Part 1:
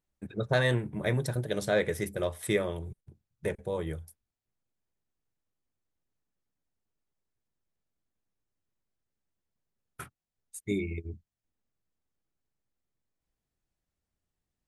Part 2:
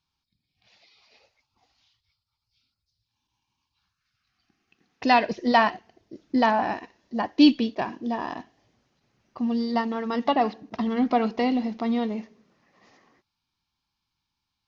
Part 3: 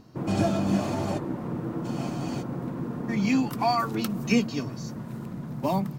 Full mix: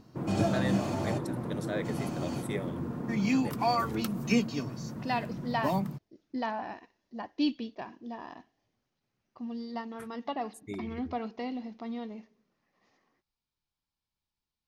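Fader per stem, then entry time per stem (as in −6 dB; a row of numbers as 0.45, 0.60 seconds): −8.5, −12.5, −3.5 decibels; 0.00, 0.00, 0.00 seconds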